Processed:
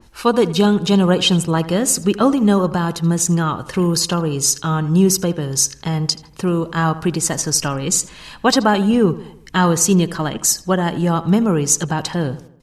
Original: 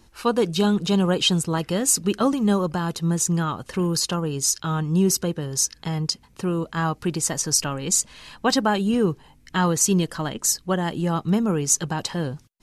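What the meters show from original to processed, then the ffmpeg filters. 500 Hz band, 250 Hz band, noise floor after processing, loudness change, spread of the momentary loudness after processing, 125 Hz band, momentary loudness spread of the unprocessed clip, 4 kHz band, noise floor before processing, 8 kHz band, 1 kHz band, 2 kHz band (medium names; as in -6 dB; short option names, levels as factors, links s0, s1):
+6.0 dB, +6.0 dB, -44 dBFS, +5.5 dB, 6 LU, +6.0 dB, 7 LU, +4.5 dB, -55 dBFS, +4.0 dB, +6.0 dB, +6.0 dB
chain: -filter_complex "[0:a]asplit=2[s0][s1];[s1]adelay=80,lowpass=f=3000:p=1,volume=0.168,asplit=2[s2][s3];[s3]adelay=80,lowpass=f=3000:p=1,volume=0.5,asplit=2[s4][s5];[s5]adelay=80,lowpass=f=3000:p=1,volume=0.5,asplit=2[s6][s7];[s7]adelay=80,lowpass=f=3000:p=1,volume=0.5,asplit=2[s8][s9];[s9]adelay=80,lowpass=f=3000:p=1,volume=0.5[s10];[s2][s4][s6][s8][s10]amix=inputs=5:normalize=0[s11];[s0][s11]amix=inputs=2:normalize=0,adynamicequalizer=threshold=0.0141:dfrequency=2900:dqfactor=0.7:tfrequency=2900:tqfactor=0.7:attack=5:release=100:ratio=0.375:range=2.5:mode=cutabove:tftype=highshelf,volume=2"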